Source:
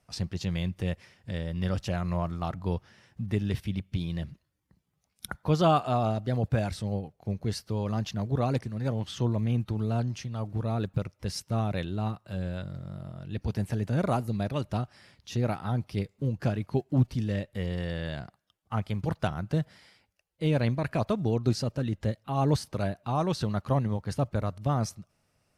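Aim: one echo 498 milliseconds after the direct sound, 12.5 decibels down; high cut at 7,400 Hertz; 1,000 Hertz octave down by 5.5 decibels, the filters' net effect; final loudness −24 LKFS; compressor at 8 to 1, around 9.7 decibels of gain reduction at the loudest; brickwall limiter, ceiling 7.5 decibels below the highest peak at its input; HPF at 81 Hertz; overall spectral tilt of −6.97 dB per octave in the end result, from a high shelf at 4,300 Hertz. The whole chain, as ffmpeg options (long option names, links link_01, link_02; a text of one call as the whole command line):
ffmpeg -i in.wav -af "highpass=81,lowpass=7400,equalizer=frequency=1000:width_type=o:gain=-8,highshelf=frequency=4300:gain=-4,acompressor=threshold=-29dB:ratio=8,alimiter=level_in=3.5dB:limit=-24dB:level=0:latency=1,volume=-3.5dB,aecho=1:1:498:0.237,volume=14dB" out.wav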